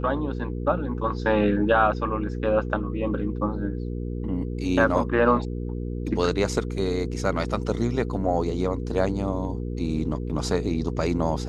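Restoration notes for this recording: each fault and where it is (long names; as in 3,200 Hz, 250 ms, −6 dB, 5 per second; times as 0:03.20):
mains hum 60 Hz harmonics 8 −30 dBFS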